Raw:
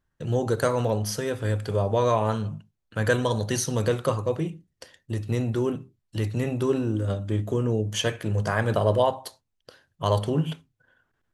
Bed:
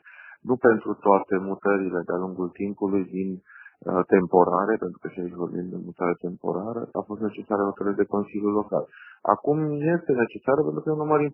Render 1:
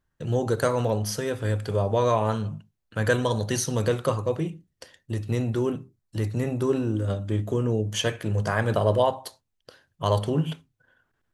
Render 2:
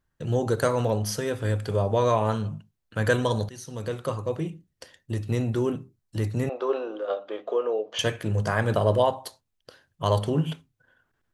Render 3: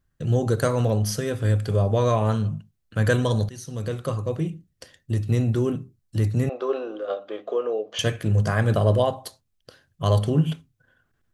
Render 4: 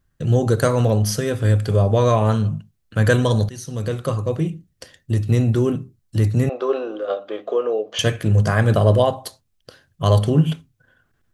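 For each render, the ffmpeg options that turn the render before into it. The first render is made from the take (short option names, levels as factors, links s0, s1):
-filter_complex "[0:a]asettb=1/sr,asplit=3[s0][s1][s2];[s0]atrim=end=5.804[s3];[s1]atrim=start=5.8:end=6.73,asetpts=PTS-STARTPTS,afade=t=in:d=0.004:c=qsin,afade=t=out:st=0.926:d=0.004:c=qsin,equalizer=f=3000:t=o:w=0.77:g=-5.5[s4];[s2]atrim=start=6.726[s5];[s3][s4]acrossfade=d=0.004:c1=hsin:c2=qsin[s6];[s6][s5]acrossfade=d=0.004:c1=qsin:c2=hsin"
-filter_complex "[0:a]asettb=1/sr,asplit=3[s0][s1][s2];[s0]atrim=end=6.494[s3];[s1]atrim=start=6.49:end=7.99,asetpts=PTS-STARTPTS,afade=t=in:d=0.004:c=qsin,afade=t=out:st=1.496:d=0.004:c=qsin,highpass=f=420:w=0.5412,highpass=f=420:w=1.3066,equalizer=f=500:t=q:w=4:g=7,equalizer=f=720:t=q:w=4:g=7,equalizer=f=1200:t=q:w=4:g=7,equalizer=f=1900:t=q:w=4:g=-3,lowpass=f=4100:w=0.5412,lowpass=f=4100:w=1.3066[s4];[s2]atrim=start=7.986[s5];[s3][s4]acrossfade=d=0.004:c1=hsin:c2=qsin[s6];[s6][s5]acrossfade=d=0.004:c1=qsin:c2=hsin,asplit=2[s7][s8];[s7]atrim=end=3.49,asetpts=PTS-STARTPTS,afade=t=out:st=3.486:d=0.004:c=hsin:silence=0.0944061[s9];[s8]atrim=start=3.49,asetpts=PTS-STARTPTS,afade=t=in:d=1.62:c=qsin:silence=0.0944061[s10];[s9][s10]concat=n=2:v=0:a=1"
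-af "bass=f=250:g=6,treble=f=4000:g=2,bandreject=f=920:w=8.8"
-af "volume=1.68"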